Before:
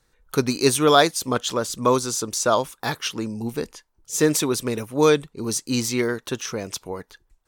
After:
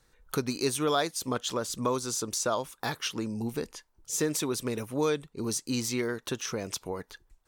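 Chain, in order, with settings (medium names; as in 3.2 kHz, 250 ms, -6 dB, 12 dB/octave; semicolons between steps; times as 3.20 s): compression 2:1, threshold -33 dBFS, peak gain reduction 12.5 dB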